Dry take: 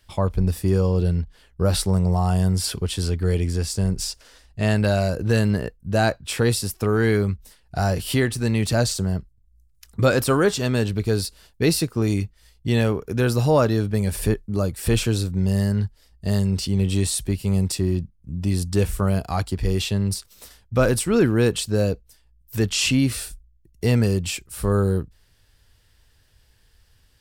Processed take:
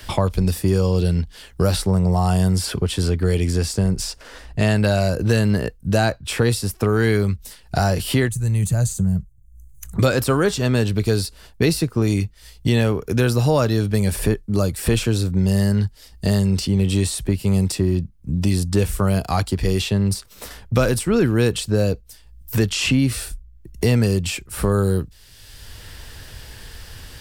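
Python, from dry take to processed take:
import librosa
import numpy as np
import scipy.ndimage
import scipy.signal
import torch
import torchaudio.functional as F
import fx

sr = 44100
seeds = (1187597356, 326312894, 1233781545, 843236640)

y = fx.spec_box(x, sr, start_s=8.28, length_s=1.68, low_hz=210.0, high_hz=6000.0, gain_db=-15)
y = fx.band_squash(y, sr, depth_pct=70)
y = y * 10.0 ** (2.0 / 20.0)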